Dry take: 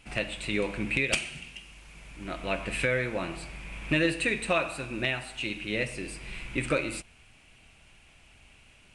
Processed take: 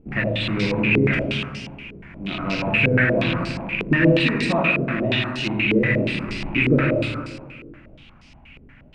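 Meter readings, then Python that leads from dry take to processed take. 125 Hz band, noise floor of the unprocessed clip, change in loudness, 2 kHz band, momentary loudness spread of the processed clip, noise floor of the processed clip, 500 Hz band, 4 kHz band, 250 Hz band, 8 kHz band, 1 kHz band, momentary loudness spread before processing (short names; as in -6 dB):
+15.0 dB, -58 dBFS, +9.5 dB, +9.0 dB, 16 LU, -48 dBFS, +9.0 dB, +8.0 dB, +13.0 dB, n/a, +8.0 dB, 15 LU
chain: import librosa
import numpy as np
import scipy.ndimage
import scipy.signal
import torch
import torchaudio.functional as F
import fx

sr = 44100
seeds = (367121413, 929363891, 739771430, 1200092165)

p1 = fx.rattle_buzz(x, sr, strikes_db=-39.0, level_db=-21.0)
p2 = fx.low_shelf(p1, sr, hz=210.0, db=6.5)
p3 = fx.hum_notches(p2, sr, base_hz=50, count=3)
p4 = fx.rider(p3, sr, range_db=10, speed_s=2.0)
p5 = p4 + fx.echo_single(p4, sr, ms=80, db=-4.0, dry=0)
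p6 = 10.0 ** (-17.5 / 20.0) * np.tanh(p5 / 10.0 ** (-17.5 / 20.0))
p7 = fx.graphic_eq_10(p6, sr, hz=(125, 250, 500), db=(5, 8, -4))
p8 = fx.rev_plate(p7, sr, seeds[0], rt60_s=1.9, hf_ratio=0.75, predelay_ms=0, drr_db=-0.5)
y = fx.filter_held_lowpass(p8, sr, hz=8.4, low_hz=430.0, high_hz=5100.0)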